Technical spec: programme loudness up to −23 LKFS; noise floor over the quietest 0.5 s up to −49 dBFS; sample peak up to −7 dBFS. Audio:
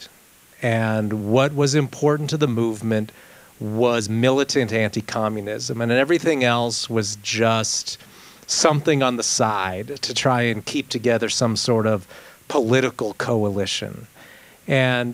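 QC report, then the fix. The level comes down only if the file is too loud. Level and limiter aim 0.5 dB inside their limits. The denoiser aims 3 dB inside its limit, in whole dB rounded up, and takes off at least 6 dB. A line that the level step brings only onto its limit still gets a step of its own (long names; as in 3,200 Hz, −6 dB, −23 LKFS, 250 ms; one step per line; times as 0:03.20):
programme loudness −20.5 LKFS: out of spec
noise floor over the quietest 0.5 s −51 dBFS: in spec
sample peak −3.5 dBFS: out of spec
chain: level −3 dB
brickwall limiter −7.5 dBFS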